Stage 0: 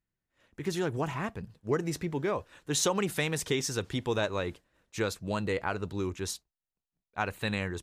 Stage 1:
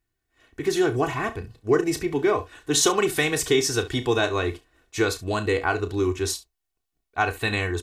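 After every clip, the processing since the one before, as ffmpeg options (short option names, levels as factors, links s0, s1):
-filter_complex "[0:a]aecho=1:1:2.7:0.72,asplit=2[s0][s1];[s1]aecho=0:1:33|68:0.282|0.141[s2];[s0][s2]amix=inputs=2:normalize=0,volume=2"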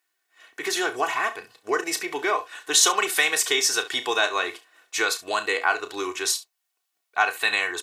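-filter_complex "[0:a]highpass=810,asplit=2[s0][s1];[s1]acompressor=threshold=0.0158:ratio=6,volume=1[s2];[s0][s2]amix=inputs=2:normalize=0,volume=1.33"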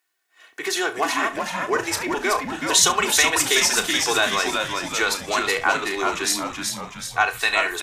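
-filter_complex "[0:a]asplit=8[s0][s1][s2][s3][s4][s5][s6][s7];[s1]adelay=376,afreqshift=-90,volume=0.596[s8];[s2]adelay=752,afreqshift=-180,volume=0.309[s9];[s3]adelay=1128,afreqshift=-270,volume=0.16[s10];[s4]adelay=1504,afreqshift=-360,volume=0.0841[s11];[s5]adelay=1880,afreqshift=-450,volume=0.0437[s12];[s6]adelay=2256,afreqshift=-540,volume=0.0226[s13];[s7]adelay=2632,afreqshift=-630,volume=0.0117[s14];[s0][s8][s9][s10][s11][s12][s13][s14]amix=inputs=8:normalize=0,volume=1.19"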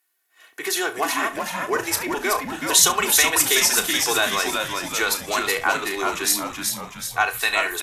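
-af "equalizer=f=12000:t=o:w=0.56:g=12.5,volume=0.891"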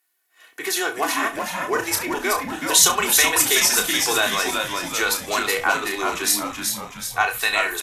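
-filter_complex "[0:a]asplit=2[s0][s1];[s1]adelay=29,volume=0.398[s2];[s0][s2]amix=inputs=2:normalize=0"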